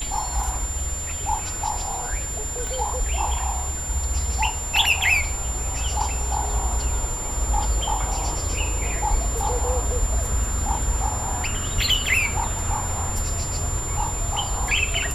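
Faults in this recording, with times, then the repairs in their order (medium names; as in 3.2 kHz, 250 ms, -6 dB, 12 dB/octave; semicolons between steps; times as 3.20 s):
whine 7.2 kHz -29 dBFS
2.67 s: pop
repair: de-click; band-stop 7.2 kHz, Q 30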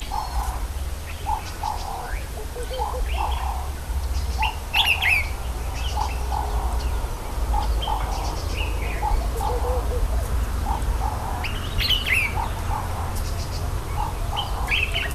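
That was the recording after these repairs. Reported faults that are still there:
2.67 s: pop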